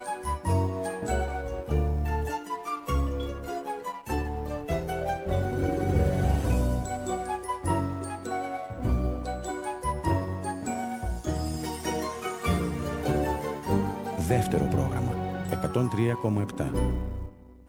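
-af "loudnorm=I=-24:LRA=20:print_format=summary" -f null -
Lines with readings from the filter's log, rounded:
Input Integrated:    -29.5 LUFS
Input True Peak:     -11.7 dBTP
Input LRA:             3.2 LU
Input Threshold:     -39.6 LUFS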